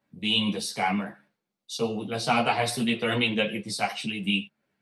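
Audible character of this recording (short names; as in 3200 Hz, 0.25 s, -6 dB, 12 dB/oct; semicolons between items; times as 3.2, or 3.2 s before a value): tremolo triangle 2.6 Hz, depth 35%; a shimmering, thickened sound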